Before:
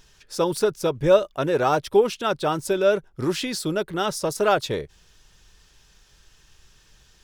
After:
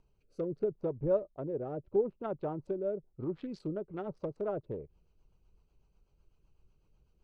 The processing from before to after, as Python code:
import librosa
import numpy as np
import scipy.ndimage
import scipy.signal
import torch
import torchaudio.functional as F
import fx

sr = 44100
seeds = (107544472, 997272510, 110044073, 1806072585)

y = fx.wiener(x, sr, points=25)
y = fx.env_lowpass_down(y, sr, base_hz=660.0, full_db=-20.5)
y = fx.rotary_switch(y, sr, hz=0.75, then_hz=8.0, switch_at_s=3.09)
y = F.gain(torch.from_numpy(y), -9.0).numpy()